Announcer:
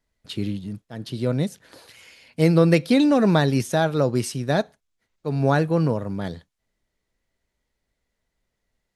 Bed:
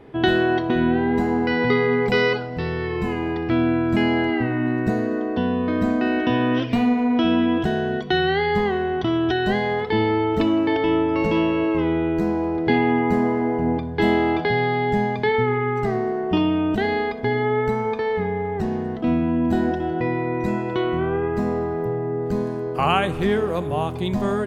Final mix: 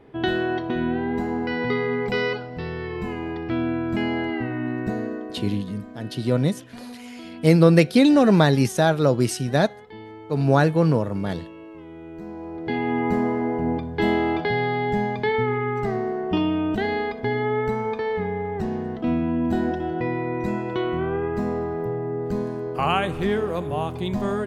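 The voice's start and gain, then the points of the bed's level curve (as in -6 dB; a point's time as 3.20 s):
5.05 s, +2.0 dB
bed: 5.06 s -5 dB
5.83 s -20.5 dB
11.86 s -20.5 dB
13.06 s -2.5 dB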